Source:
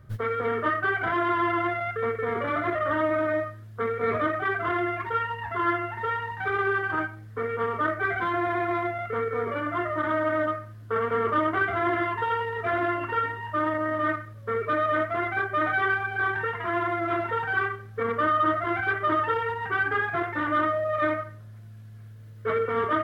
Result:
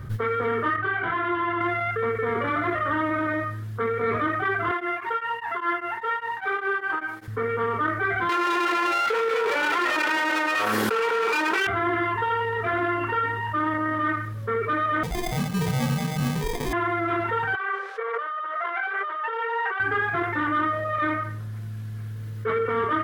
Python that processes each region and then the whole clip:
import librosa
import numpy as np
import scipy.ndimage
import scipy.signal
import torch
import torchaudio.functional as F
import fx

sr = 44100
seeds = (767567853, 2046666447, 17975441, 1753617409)

y = fx.chain(x, sr, fx.lowpass(hz=4200.0, slope=24),
    fx.detune_double(cents=17), at=(0.76, 1.61))
y = fx.chain(y, sr, fx.highpass(hz=400.0, slope=12),
    fx.tremolo_abs(hz=5.0), at=(4.71, 7.28))
y = fx.chain(y, sr, fx.lower_of_two(delay_ms=2.1),
    fx.bessel_highpass(hz=380.0, order=4),
    fx.env_flatten(amount_pct=100), at=(8.29, 11.67))
y = fx.chain(y, sr, fx.steep_highpass(hz=750.0, slope=72),
    fx.sample_hold(seeds[0], rate_hz=1400.0, jitter_pct=0), at=(15.03, 16.73))
y = fx.chain(y, sr, fx.over_compress(threshold_db=-33.0, ratio=-1.0),
    fx.steep_highpass(hz=440.0, slope=48),
    fx.air_absorb(metres=100.0), at=(17.55, 19.8))
y = fx.peak_eq(y, sr, hz=620.0, db=-9.5, octaves=0.24)
y = fx.env_flatten(y, sr, amount_pct=50)